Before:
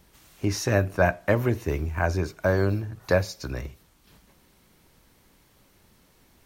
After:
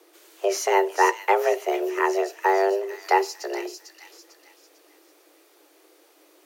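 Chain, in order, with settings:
frequency shifter +290 Hz
delay with a high-pass on its return 448 ms, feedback 38%, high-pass 3,000 Hz, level −5.5 dB
level +2 dB

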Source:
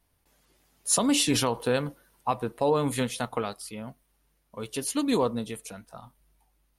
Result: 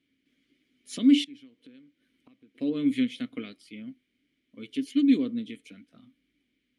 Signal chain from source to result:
0:01.24–0:02.55: gate with flip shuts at −27 dBFS, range −25 dB
background noise pink −71 dBFS
formant filter i
level +9 dB

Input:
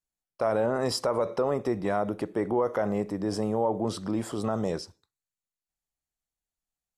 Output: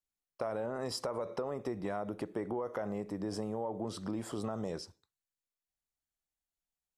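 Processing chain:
downward compressor, threshold −28 dBFS, peak gain reduction 7.5 dB
level −4.5 dB

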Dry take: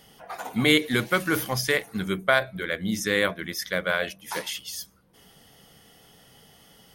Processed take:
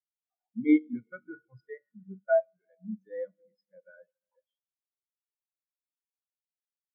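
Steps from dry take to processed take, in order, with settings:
mu-law and A-law mismatch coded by mu
four-comb reverb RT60 3.2 s, combs from 26 ms, DRR 5 dB
every bin expanded away from the loudest bin 4 to 1
level −7 dB

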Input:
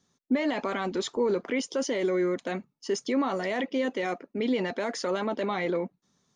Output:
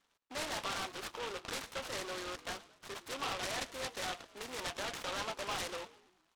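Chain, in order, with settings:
variable-slope delta modulation 32 kbit/s
in parallel at −1 dB: brickwall limiter −25 dBFS, peak gain reduction 8.5 dB
on the sum: soft clipping −17 dBFS, distortion −21 dB
four-pole ladder band-pass 1,700 Hz, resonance 20%
wave folding −38 dBFS
high-frequency loss of the air 330 metres
on a send: echo with shifted repeats 110 ms, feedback 49%, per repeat −49 Hz, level −18 dB
on the sum: short delay modulated by noise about 1,800 Hz, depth 0.13 ms
level +9 dB

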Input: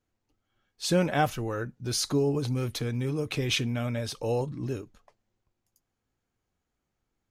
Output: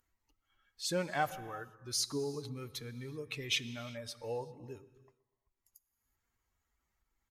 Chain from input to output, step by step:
spectral dynamics exaggerated over time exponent 1.5
upward compression, threshold −38 dBFS
on a send at −15.5 dB: convolution reverb, pre-delay 3 ms
on the sum: downsampling to 32,000 Hz
low-shelf EQ 430 Hz −11.5 dB
feedback echo with a low-pass in the loop 123 ms, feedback 47%, low-pass 1,500 Hz, level −19.5 dB
level −3 dB

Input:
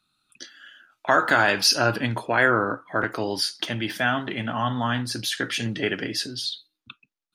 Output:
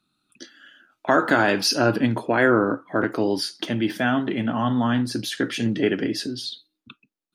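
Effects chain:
parametric band 280 Hz +11 dB 2.1 octaves
level −3 dB

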